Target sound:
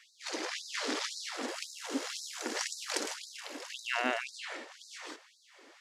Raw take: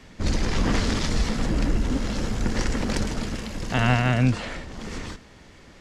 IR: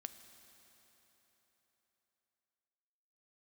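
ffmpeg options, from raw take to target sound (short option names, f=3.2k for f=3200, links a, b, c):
-filter_complex "[0:a]asettb=1/sr,asplit=3[a][b][c];[a]atrim=end=1.484[d];[b]atrim=start=1.48:end=3.17,asetpts=PTS-STARTPTS,afade=t=in:d=0.004:c=qsin,afade=t=out:st=1.686:d=0.004:c=qsin,highshelf=f=4.5k:g=7[e];[c]atrim=start=3.166[f];[d][e]acrossfade=d=0.004:c1=hsin:c2=qsin[g];[g][f]acrossfade=d=0.004:c1=qsin:c2=hsin,afftfilt=real='re*gte(b*sr/1024,240*pow(3800/240,0.5+0.5*sin(2*PI*1.9*pts/sr)))':imag='im*gte(b*sr/1024,240*pow(3800/240,0.5+0.5*sin(2*PI*1.9*pts/sr)))':win_size=1024:overlap=0.75,volume=-5dB"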